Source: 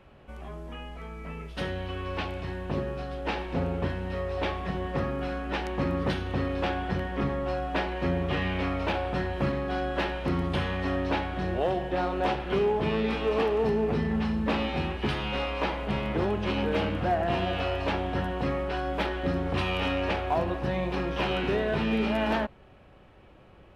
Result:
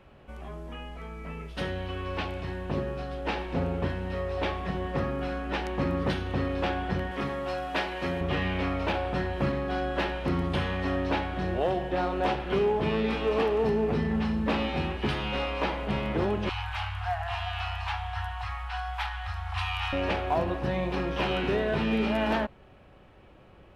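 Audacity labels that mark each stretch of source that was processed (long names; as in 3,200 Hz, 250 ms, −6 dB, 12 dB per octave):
7.110000	8.210000	spectral tilt +2 dB per octave
16.490000	19.930000	Chebyshev band-stop filter 110–740 Hz, order 5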